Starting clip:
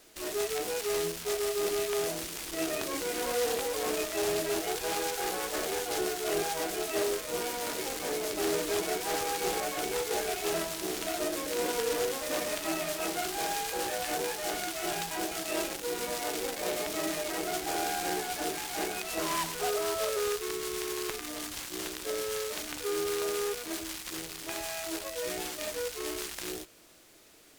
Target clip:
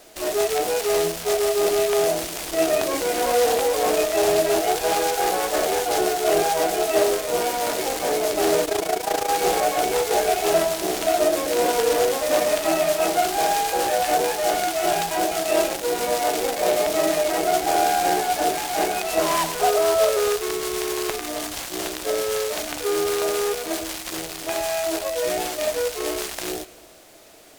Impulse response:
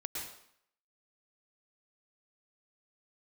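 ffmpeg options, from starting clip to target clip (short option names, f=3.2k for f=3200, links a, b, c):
-filter_complex "[0:a]equalizer=f=670:t=o:w=0.69:g=9,asplit=2[a][b];[1:a]atrim=start_sample=2205,adelay=107[c];[b][c]afir=irnorm=-1:irlink=0,volume=-20dB[d];[a][d]amix=inputs=2:normalize=0,asettb=1/sr,asplit=3[e][f][g];[e]atrim=end=8.654[h];[f]atrim=start=8.65:end=9.29,asetpts=PTS-STARTPTS,afade=t=in:d=0.004:c=qsin,afade=t=out:st=0.636:d=0.004:c=qsin,tremolo=f=28:d=0.788[i];[g]atrim=start=9.286[j];[h][i]acrossfade=d=0.004:c1=hsin:c2=qsin[k];[k][j]acrossfade=d=0.004:c1=qsin:c2=hsin,volume=7.5dB"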